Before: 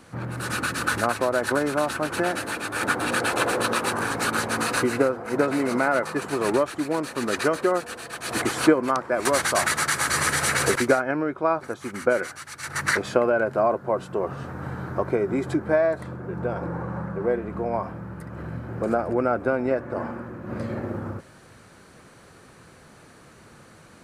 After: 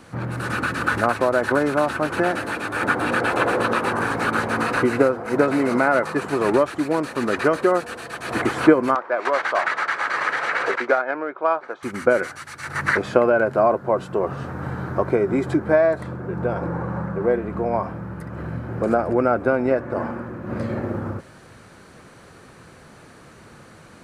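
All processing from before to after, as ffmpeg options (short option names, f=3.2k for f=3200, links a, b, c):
-filter_complex "[0:a]asettb=1/sr,asplit=3[a][b][c];[a]atrim=end=8.954[d];[b]atrim=start=8.95:end=11.83,asetpts=PTS-STARTPTS,afade=t=in:d=0.004:c=qsin,afade=t=out:st=2.876:d=0.004:c=qsin,highpass=540,highshelf=f=7.6k:g=-10,adynamicsmooth=sensitivity=1:basefreq=3.6k[e];[c]atrim=start=11.826[f];[d][e]acrossfade=d=0.004:c1=hsin:c2=qsin[g];[g][f]acrossfade=d=0.004:c1=qsin:c2=hsin,acrossover=split=2800[h][i];[i]acompressor=threshold=-41dB:ratio=4:attack=1:release=60[j];[h][j]amix=inputs=2:normalize=0,highshelf=f=5.8k:g=-4.5,volume=4dB"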